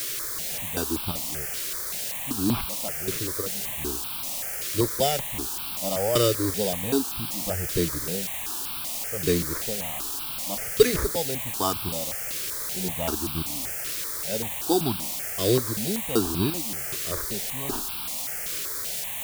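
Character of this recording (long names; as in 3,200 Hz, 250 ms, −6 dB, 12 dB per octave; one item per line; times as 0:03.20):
aliases and images of a low sample rate 4,200 Hz, jitter 0%
chopped level 1.3 Hz, depth 60%, duty 45%
a quantiser's noise floor 6 bits, dither triangular
notches that jump at a steady rate 5.2 Hz 220–1,900 Hz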